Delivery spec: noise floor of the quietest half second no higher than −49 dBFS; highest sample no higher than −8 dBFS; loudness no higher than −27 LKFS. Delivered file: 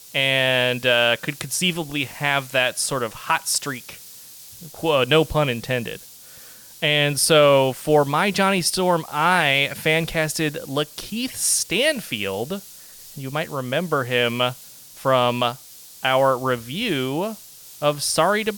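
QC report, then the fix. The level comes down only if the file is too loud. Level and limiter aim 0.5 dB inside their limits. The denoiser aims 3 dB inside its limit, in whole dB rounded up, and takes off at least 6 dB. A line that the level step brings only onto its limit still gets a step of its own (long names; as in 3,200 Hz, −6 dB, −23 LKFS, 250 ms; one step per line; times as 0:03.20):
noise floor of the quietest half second −44 dBFS: out of spec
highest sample −5.5 dBFS: out of spec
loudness −20.5 LKFS: out of spec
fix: level −7 dB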